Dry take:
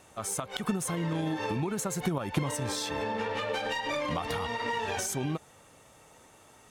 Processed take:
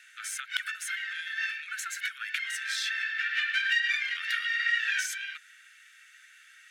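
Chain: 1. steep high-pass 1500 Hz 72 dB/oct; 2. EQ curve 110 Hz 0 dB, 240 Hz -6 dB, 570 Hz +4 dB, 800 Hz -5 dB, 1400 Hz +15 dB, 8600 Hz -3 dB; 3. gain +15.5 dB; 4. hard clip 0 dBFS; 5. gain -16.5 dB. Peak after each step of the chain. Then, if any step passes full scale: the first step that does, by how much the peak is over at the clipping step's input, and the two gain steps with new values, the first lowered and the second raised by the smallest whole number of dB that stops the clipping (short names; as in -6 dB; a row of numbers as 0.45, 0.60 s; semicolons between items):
-16.0, -9.0, +6.5, 0.0, -16.5 dBFS; step 3, 6.5 dB; step 3 +8.5 dB, step 5 -9.5 dB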